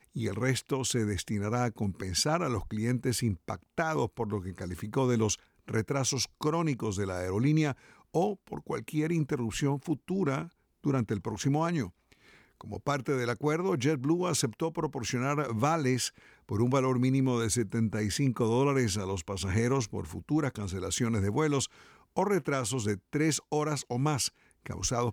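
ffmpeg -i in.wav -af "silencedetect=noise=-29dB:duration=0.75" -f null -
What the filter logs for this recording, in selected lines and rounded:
silence_start: 11.84
silence_end: 12.73 | silence_duration: 0.89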